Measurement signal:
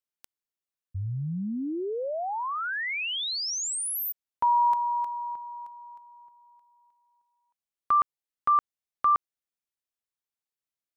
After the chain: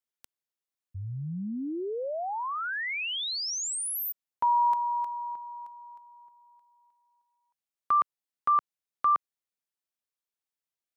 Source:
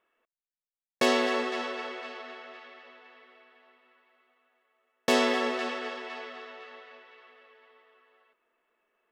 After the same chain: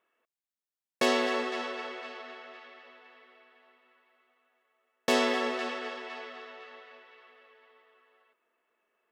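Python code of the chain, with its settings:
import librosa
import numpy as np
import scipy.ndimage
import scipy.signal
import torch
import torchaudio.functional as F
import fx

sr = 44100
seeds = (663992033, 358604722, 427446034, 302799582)

y = fx.low_shelf(x, sr, hz=75.0, db=-9.5)
y = y * librosa.db_to_amplitude(-1.5)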